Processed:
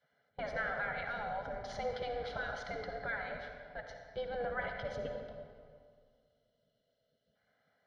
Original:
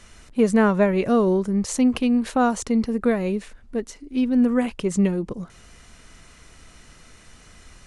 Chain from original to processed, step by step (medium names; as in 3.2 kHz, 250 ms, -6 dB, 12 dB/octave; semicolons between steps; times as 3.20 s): time-frequency box 4.86–7.35 s, 670–2600 Hz -16 dB; tape spacing loss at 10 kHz 41 dB; spectral gate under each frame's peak -20 dB weak; peaking EQ 73 Hz +3.5 dB; in parallel at +2 dB: peak limiter -35.5 dBFS, peak gain reduction 11.5 dB; on the sum: static phaser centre 1.7 kHz, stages 8; comb of notches 910 Hz; gate with hold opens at -39 dBFS; bucket-brigade echo 172 ms, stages 4096, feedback 49%, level -18 dB; on a send at -3.5 dB: reverberation RT60 2.0 s, pre-delay 50 ms; on the sum: trim +1.5 dB